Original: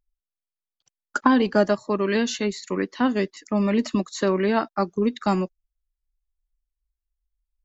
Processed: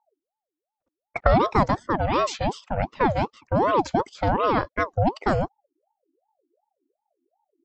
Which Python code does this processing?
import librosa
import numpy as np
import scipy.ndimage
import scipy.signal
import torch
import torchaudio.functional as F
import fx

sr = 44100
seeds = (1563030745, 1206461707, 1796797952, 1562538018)

y = fx.low_shelf(x, sr, hz=370.0, db=5.0)
y = fx.env_lowpass(y, sr, base_hz=740.0, full_db=-15.5)
y = fx.ring_lfo(y, sr, carrier_hz=590.0, swing_pct=50, hz=2.7)